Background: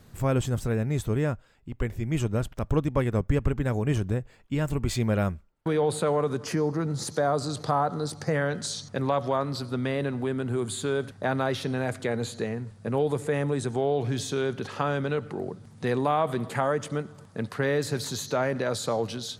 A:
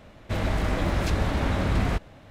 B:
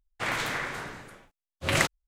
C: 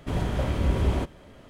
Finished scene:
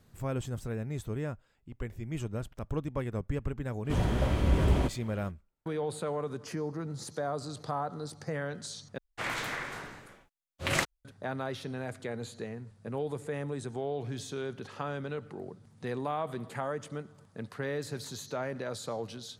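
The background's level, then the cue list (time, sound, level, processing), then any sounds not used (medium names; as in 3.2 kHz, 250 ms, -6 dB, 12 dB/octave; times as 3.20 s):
background -9 dB
3.83 s: add C -1.5 dB, fades 0.05 s
8.98 s: replace with B -4.5 dB
not used: A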